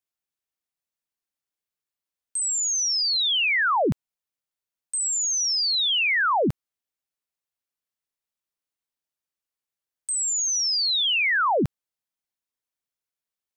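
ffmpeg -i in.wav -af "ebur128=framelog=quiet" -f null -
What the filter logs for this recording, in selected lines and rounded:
Integrated loudness:
  I:         -21.3 LUFS
  Threshold: -31.5 LUFS
Loudness range:
  LRA:         6.1 LU
  Threshold: -44.0 LUFS
  LRA low:   -28.2 LUFS
  LRA high:  -22.1 LUFS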